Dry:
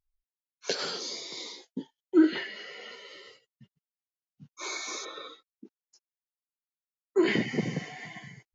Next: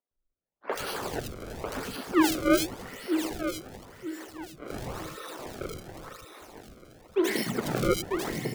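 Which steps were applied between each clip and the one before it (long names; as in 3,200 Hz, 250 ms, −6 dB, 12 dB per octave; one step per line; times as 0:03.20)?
feedback delay that plays each chunk backwards 472 ms, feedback 59%, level −1 dB
sample-and-hold swept by an LFO 28×, swing 160% 0.92 Hz
three-band delay without the direct sound mids, highs, lows 80/110 ms, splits 230/2,600 Hz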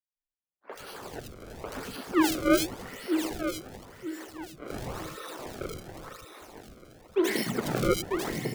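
fade in at the beginning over 2.55 s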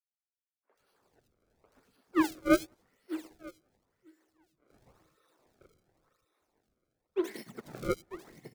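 parametric band 3,000 Hz −4 dB 0.22 octaves
single-tap delay 183 ms −20.5 dB
expander for the loud parts 2.5 to 1, over −38 dBFS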